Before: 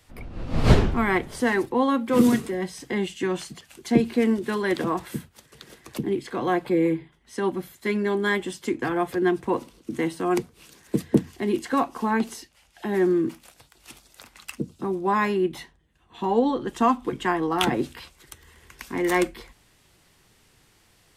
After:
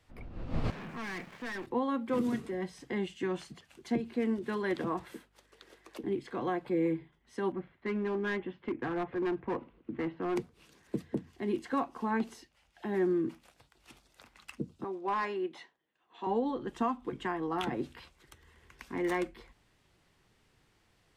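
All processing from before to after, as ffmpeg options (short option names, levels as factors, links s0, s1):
-filter_complex "[0:a]asettb=1/sr,asplit=3[s0][s1][s2];[s0]atrim=end=0.704[s3];[s1]atrim=start=0.7:end=1.67,asetpts=PTS-STARTPTS,afade=t=in:d=0.004:c=qsin,afade=t=out:st=0.966:d=0.004:c=qsin,highpass=f=150:w=0.5412,highpass=f=150:w=1.3066,equalizer=f=180:t=q:w=4:g=5,equalizer=f=300:t=q:w=4:g=-4,equalizer=f=430:t=q:w=4:g=-5,equalizer=f=1100:t=q:w=4:g=5,equalizer=f=1700:t=q:w=4:g=8,equalizer=f=2400:t=q:w=4:g=10,lowpass=f=3300:w=0.5412,lowpass=f=3300:w=1.3066,aeval=exprs='val(0)*gte(abs(val(0)),0.01)':c=same,aeval=exprs='(tanh(28.2*val(0)+0.25)-tanh(0.25))/28.2':c=same[s4];[s2]atrim=start=1.666[s5];[s3][s4]acrossfade=d=0.004:c1=hsin:c2=qsin[s6];[s6][s5]acrossfade=d=0.004:c1=qsin:c2=hsin,asettb=1/sr,asplit=3[s7][s8][s9];[s7]atrim=end=5.134[s10];[s8]atrim=start=5.13:end=6.04,asetpts=PTS-STARTPTS,afade=t=in:d=0.004:c=qsin,afade=t=out:st=0.906:d=0.004:c=qsin,highpass=f=300:w=0.5412,highpass=f=300:w=1.3066,aeval=exprs='val(0)+0.000631*(sin(2*PI*50*n/s)+sin(2*PI*2*50*n/s)/2+sin(2*PI*3*50*n/s)/3+sin(2*PI*4*50*n/s)/4+sin(2*PI*5*50*n/s)/5)':c=same[s11];[s9]atrim=start=6.036[s12];[s10][s11]acrossfade=d=0.004:c1=hsin:c2=qsin[s13];[s13][s12]acrossfade=d=0.004:c1=qsin:c2=hsin,asettb=1/sr,asplit=3[s14][s15][s16];[s14]atrim=end=7.524[s17];[s15]atrim=start=7.52:end=10.36,asetpts=PTS-STARTPTS,afade=t=in:d=0.004:c=qsin,afade=t=out:st=2.836:d=0.004:c=qsin,lowpass=f=2600:w=0.5412,lowpass=f=2600:w=1.3066,volume=11.2,asoftclip=hard,volume=0.0891[s18];[s16]atrim=start=10.356[s19];[s17][s18]acrossfade=d=0.004:c1=hsin:c2=qsin[s20];[s20][s19]acrossfade=d=0.004:c1=qsin:c2=hsin,asettb=1/sr,asplit=3[s21][s22][s23];[s21]atrim=end=14.844[s24];[s22]atrim=start=14.84:end=16.27,asetpts=PTS-STARTPTS,afade=t=in:d=0.004:c=qsin,afade=t=out:st=1.426:d=0.004:c=qsin,highpass=390,lowpass=7600,asoftclip=type=hard:threshold=0.126[s25];[s23]atrim=start=16.266[s26];[s24][s25]acrossfade=d=0.004:c1=hsin:c2=qsin[s27];[s27][s26]acrossfade=d=0.004:c1=qsin:c2=hsin,lowpass=f=3200:p=1,alimiter=limit=0.2:level=0:latency=1:release=347,volume=0.422"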